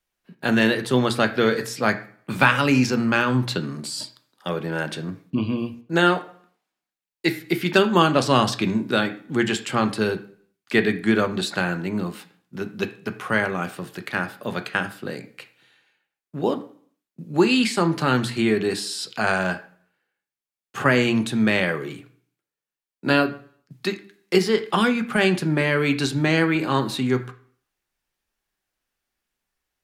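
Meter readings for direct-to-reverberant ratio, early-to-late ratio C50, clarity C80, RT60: 6.5 dB, 13.5 dB, 17.5 dB, 0.50 s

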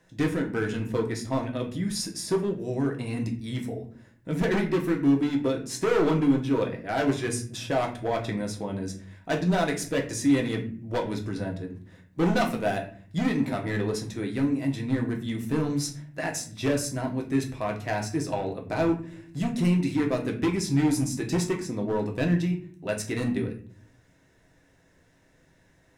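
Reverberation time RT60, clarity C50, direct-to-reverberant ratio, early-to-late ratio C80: 0.50 s, 10.0 dB, 1.0 dB, 15.0 dB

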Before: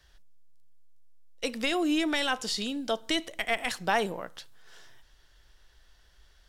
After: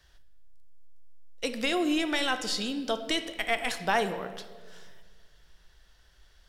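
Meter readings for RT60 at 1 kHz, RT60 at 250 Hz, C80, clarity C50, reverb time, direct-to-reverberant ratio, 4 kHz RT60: 1.3 s, 2.2 s, 12.5 dB, 11.5 dB, 1.6 s, 9.5 dB, 1.0 s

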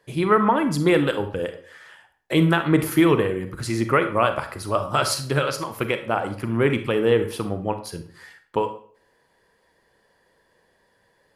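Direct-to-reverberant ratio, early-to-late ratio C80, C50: 8.5 dB, 14.5 dB, 10.5 dB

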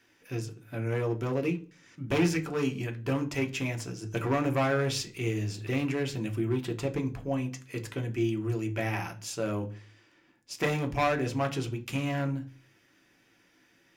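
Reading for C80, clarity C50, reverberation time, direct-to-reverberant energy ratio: 21.5 dB, 16.5 dB, 0.40 s, 4.0 dB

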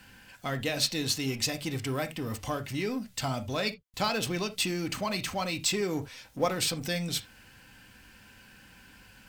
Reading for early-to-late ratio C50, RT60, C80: 17.0 dB, not exponential, 28.0 dB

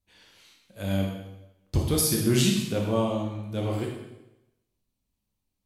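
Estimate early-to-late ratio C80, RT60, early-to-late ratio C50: 5.0 dB, 0.95 s, 3.0 dB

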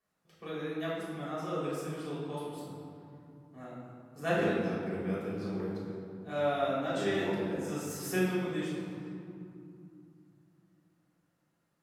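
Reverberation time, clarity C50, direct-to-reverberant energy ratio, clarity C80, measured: 2.7 s, -1.5 dB, -8.5 dB, 1.0 dB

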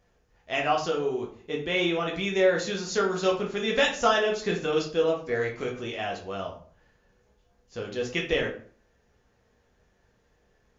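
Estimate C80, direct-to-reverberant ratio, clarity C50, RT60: 12.5 dB, -1.5 dB, 7.5 dB, 0.50 s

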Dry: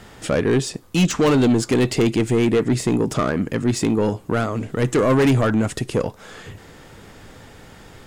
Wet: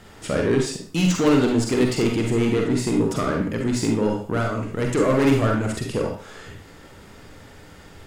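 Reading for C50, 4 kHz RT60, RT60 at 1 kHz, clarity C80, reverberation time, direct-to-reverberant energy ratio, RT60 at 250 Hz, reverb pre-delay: 3.5 dB, 0.40 s, 0.40 s, 9.0 dB, 0.40 s, 0.5 dB, 0.40 s, 38 ms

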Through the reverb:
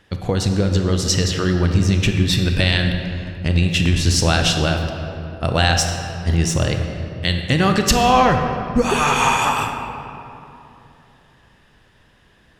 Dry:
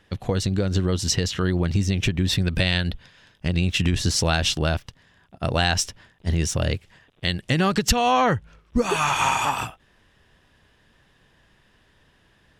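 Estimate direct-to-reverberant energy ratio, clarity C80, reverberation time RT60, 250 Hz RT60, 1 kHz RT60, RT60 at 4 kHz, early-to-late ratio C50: 4.0 dB, 6.0 dB, 3.0 s, 3.5 s, 2.8 s, 1.6 s, 5.0 dB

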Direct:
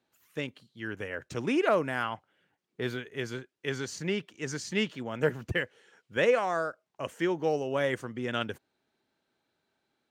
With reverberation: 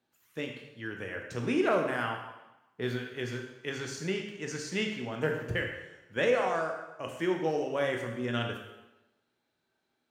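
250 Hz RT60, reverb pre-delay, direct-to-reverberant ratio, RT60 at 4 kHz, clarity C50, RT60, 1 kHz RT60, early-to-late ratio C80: 1.0 s, 14 ms, 2.0 dB, 0.90 s, 5.0 dB, 1.0 s, 1.0 s, 7.0 dB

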